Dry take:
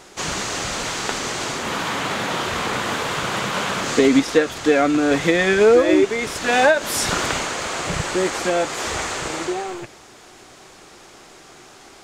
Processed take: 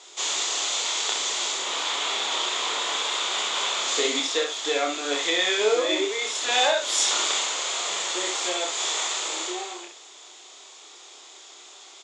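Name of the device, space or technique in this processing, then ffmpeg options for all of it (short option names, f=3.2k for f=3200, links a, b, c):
phone speaker on a table: -af "highpass=f=420:w=0.5412,highpass=f=420:w=1.3066,equalizer=f=510:t=q:w=4:g=-4,equalizer=f=1k:t=q:w=4:g=3,equalizer=f=1.6k:t=q:w=4:g=-6,equalizer=f=3.5k:t=q:w=4:g=10,equalizer=f=7.1k:t=q:w=4:g=9,lowpass=f=7.6k:w=0.5412,lowpass=f=7.6k:w=1.3066,equalizer=f=820:w=0.56:g=-5,aecho=1:1:28|66:0.631|0.531,volume=-4dB"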